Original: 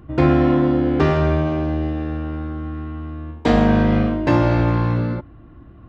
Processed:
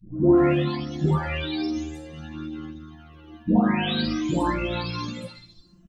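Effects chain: spectral delay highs late, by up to 0.952 s; bell 3600 Hz +8.5 dB 1.2 oct; small resonant body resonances 230/2600 Hz, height 8 dB, ringing for 35 ms; reverb RT60 0.50 s, pre-delay 5 ms, DRR 5.5 dB; flange 0.57 Hz, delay 9.7 ms, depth 3.2 ms, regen -12%; tone controls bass +2 dB, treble +11 dB; speakerphone echo 90 ms, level -13 dB; reverb removal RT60 2 s; gain -1.5 dB

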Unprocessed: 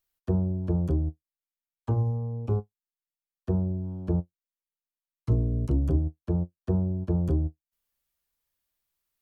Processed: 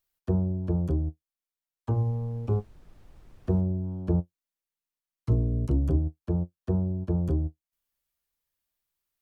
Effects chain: 1.93–3.6 added noise brown -52 dBFS; vocal rider 2 s

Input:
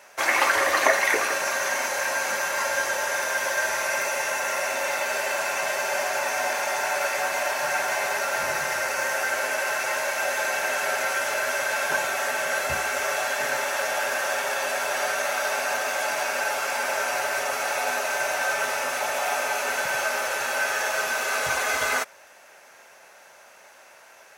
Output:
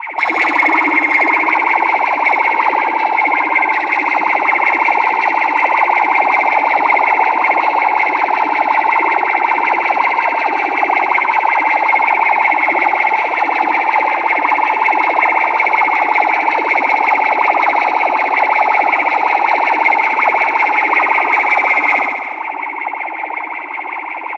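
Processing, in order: Chebyshev low-pass 3400 Hz, order 2; low shelf 410 Hz -9.5 dB; comb 5.6 ms, depth 76%; compressor 3:1, threshold -39 dBFS, peak gain reduction 17.5 dB; vowel filter u; sine folder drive 14 dB, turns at -34.5 dBFS; wah 5.4 Hz 290–2200 Hz, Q 9.4; flutter echo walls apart 11.5 m, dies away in 1.4 s; maximiser +35.5 dB; gain -1 dB

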